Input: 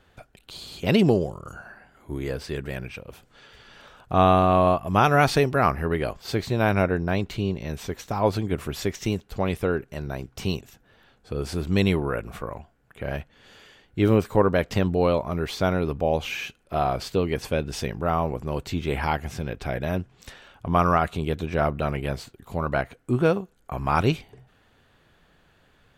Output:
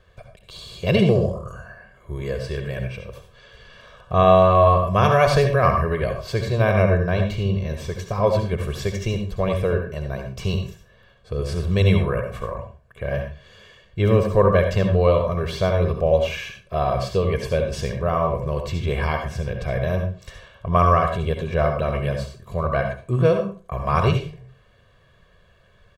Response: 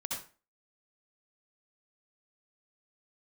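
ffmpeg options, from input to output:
-filter_complex "[0:a]highshelf=frequency=8400:gain=-6.5,aecho=1:1:1.8:0.81,asplit=2[link_01][link_02];[link_02]equalizer=frequency=13000:width=2.9:gain=-5.5[link_03];[1:a]atrim=start_sample=2205,lowshelf=frequency=390:gain=6[link_04];[link_03][link_04]afir=irnorm=-1:irlink=0,volume=-2dB[link_05];[link_01][link_05]amix=inputs=2:normalize=0,volume=-5dB"

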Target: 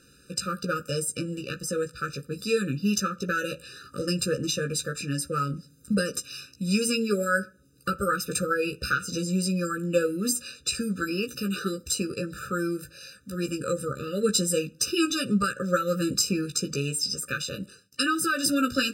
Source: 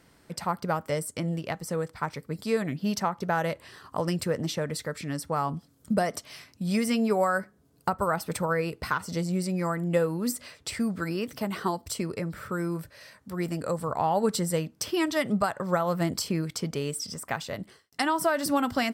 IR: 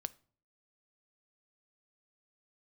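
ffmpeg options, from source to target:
-filter_complex "[0:a]equalizer=frequency=6100:width_type=o:width=3:gain=9.5,asplit=2[link_01][link_02];[1:a]atrim=start_sample=2205,adelay=15[link_03];[link_02][link_03]afir=irnorm=-1:irlink=0,volume=-2dB[link_04];[link_01][link_04]amix=inputs=2:normalize=0,afftfilt=real='re*eq(mod(floor(b*sr/1024/590),2),0)':imag='im*eq(mod(floor(b*sr/1024/590),2),0)':win_size=1024:overlap=0.75"

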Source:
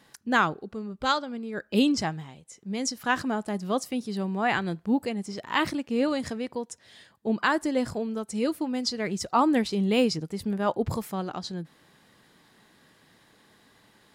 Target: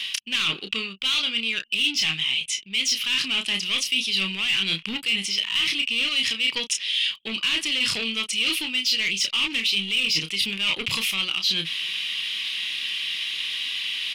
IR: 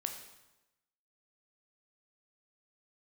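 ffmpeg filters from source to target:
-filter_complex "[0:a]equalizer=frequency=7400:width=4.8:gain=-8.5,asplit=2[link_01][link_02];[link_02]adelay=31,volume=-8dB[link_03];[link_01][link_03]amix=inputs=2:normalize=0,asplit=2[link_04][link_05];[link_05]highpass=frequency=720:poles=1,volume=25dB,asoftclip=type=tanh:threshold=-8dB[link_06];[link_04][link_06]amix=inputs=2:normalize=0,lowpass=frequency=3100:poles=1,volume=-6dB,firequalizer=gain_entry='entry(140,0);entry(730,-14);entry(1100,1);entry(1800,5);entry(2800,12);entry(4200,-6);entry(14000,-15)':delay=0.05:min_phase=1,acrossover=split=430[link_07][link_08];[link_08]acompressor=threshold=-21dB:ratio=2[link_09];[link_07][link_09]amix=inputs=2:normalize=0,aexciter=amount=10.8:drive=8.9:freq=2500,areverse,acompressor=threshold=-16dB:ratio=5,areverse,asplit=2[link_10][link_11];[link_11]adelay=297.4,volume=-29dB,highshelf=frequency=4000:gain=-6.69[link_12];[link_10][link_12]amix=inputs=2:normalize=0,anlmdn=1,volume=-6dB"

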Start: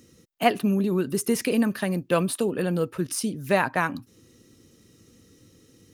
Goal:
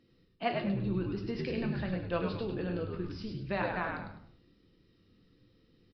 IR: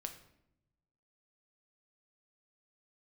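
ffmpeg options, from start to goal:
-filter_complex "[0:a]bandreject=frequency=83.5:width_type=h:width=4,bandreject=frequency=167:width_type=h:width=4,bandreject=frequency=250.5:width_type=h:width=4,bandreject=frequency=334:width_type=h:width=4,bandreject=frequency=417.5:width_type=h:width=4,bandreject=frequency=501:width_type=h:width=4,bandreject=frequency=584.5:width_type=h:width=4,aresample=11025,aresample=44100,asplit=5[link_01][link_02][link_03][link_04][link_05];[link_02]adelay=102,afreqshift=-78,volume=-4dB[link_06];[link_03]adelay=204,afreqshift=-156,volume=-13.9dB[link_07];[link_04]adelay=306,afreqshift=-234,volume=-23.8dB[link_08];[link_05]adelay=408,afreqshift=-312,volume=-33.7dB[link_09];[link_01][link_06][link_07][link_08][link_09]amix=inputs=5:normalize=0[link_10];[1:a]atrim=start_sample=2205,afade=type=out:start_time=0.36:duration=0.01,atrim=end_sample=16317,asetrate=48510,aresample=44100[link_11];[link_10][link_11]afir=irnorm=-1:irlink=0,volume=-7dB" -ar 16000 -c:a libmp3lame -b:a 40k

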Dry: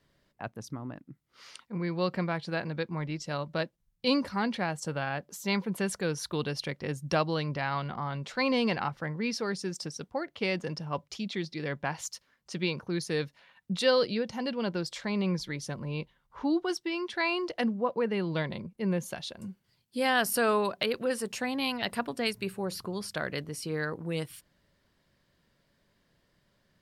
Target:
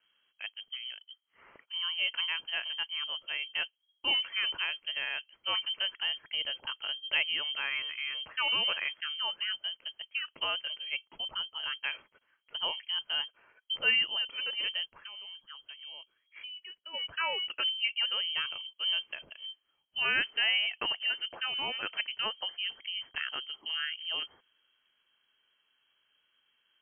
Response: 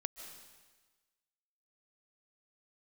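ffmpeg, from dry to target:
-filter_complex "[0:a]asplit=3[link_01][link_02][link_03];[link_01]afade=type=out:start_time=14.84:duration=0.02[link_04];[link_02]acompressor=threshold=-42dB:ratio=6,afade=type=in:start_time=14.84:duration=0.02,afade=type=out:start_time=16.93:duration=0.02[link_05];[link_03]afade=type=in:start_time=16.93:duration=0.02[link_06];[link_04][link_05][link_06]amix=inputs=3:normalize=0,lowpass=frequency=2800:width_type=q:width=0.5098,lowpass=frequency=2800:width_type=q:width=0.6013,lowpass=frequency=2800:width_type=q:width=0.9,lowpass=frequency=2800:width_type=q:width=2.563,afreqshift=-3300,volume=-2.5dB"

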